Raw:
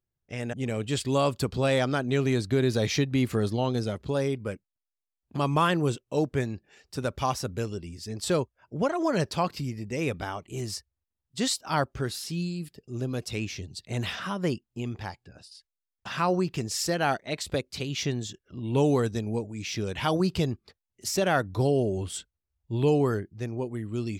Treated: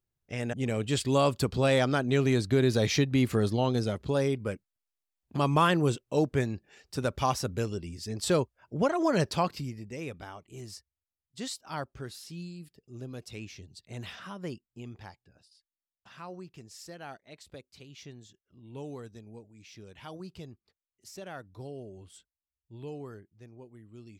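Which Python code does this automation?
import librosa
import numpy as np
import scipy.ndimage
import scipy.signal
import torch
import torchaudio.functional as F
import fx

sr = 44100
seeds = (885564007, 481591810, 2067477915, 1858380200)

y = fx.gain(x, sr, db=fx.line((9.36, 0.0), (10.09, -10.0), (15.03, -10.0), (16.14, -18.0)))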